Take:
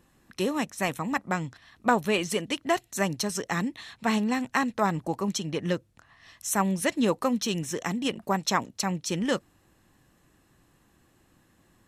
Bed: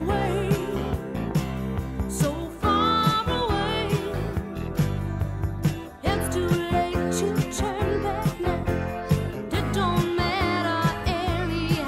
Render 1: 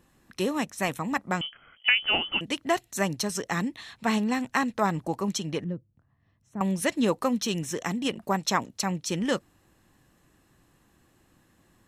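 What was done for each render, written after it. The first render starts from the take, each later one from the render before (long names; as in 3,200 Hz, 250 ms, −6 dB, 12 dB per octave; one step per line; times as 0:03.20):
0:01.41–0:02.41: voice inversion scrambler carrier 3,200 Hz
0:05.64–0:06.61: resonant band-pass 120 Hz, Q 0.95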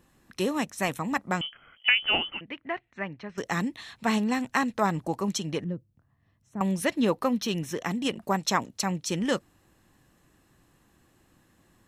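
0:02.30–0:03.38: transistor ladder low-pass 2,600 Hz, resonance 45%
0:06.82–0:07.91: parametric band 7,700 Hz −8 dB 0.8 octaves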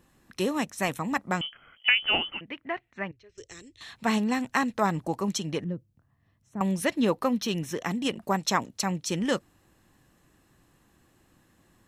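0:03.11–0:03.81: drawn EQ curve 100 Hz 0 dB, 190 Hz −30 dB, 400 Hz −9 dB, 850 Hz −29 dB, 3,000 Hz −11 dB, 7,600 Hz −3 dB, 13,000 Hz −27 dB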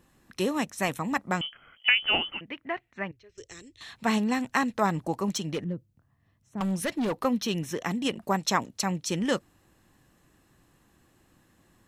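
0:05.29–0:07.25: gain into a clipping stage and back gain 24.5 dB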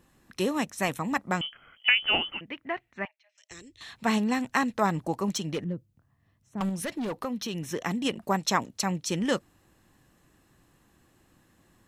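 0:03.05–0:03.51: Chebyshev high-pass with heavy ripple 600 Hz, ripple 9 dB
0:06.69–0:07.67: downward compressor 2.5 to 1, threshold −31 dBFS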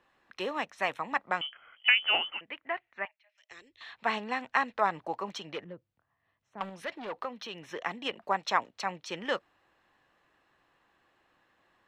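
three-way crossover with the lows and the highs turned down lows −18 dB, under 470 Hz, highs −23 dB, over 4,000 Hz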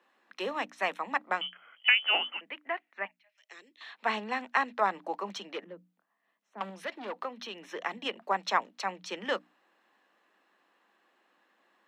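Butterworth high-pass 180 Hz 96 dB per octave
mains-hum notches 60/120/180/240/300 Hz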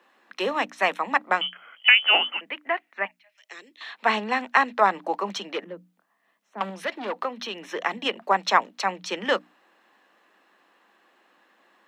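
level +8 dB
brickwall limiter −2 dBFS, peak gain reduction 1.5 dB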